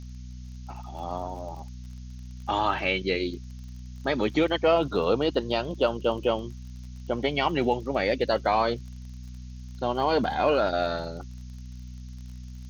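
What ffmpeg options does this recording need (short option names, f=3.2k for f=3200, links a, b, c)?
-af "adeclick=t=4,bandreject=f=62:t=h:w=4,bandreject=f=124:t=h:w=4,bandreject=f=186:t=h:w=4,bandreject=f=248:t=h:w=4,afftdn=nr=30:nf=-41"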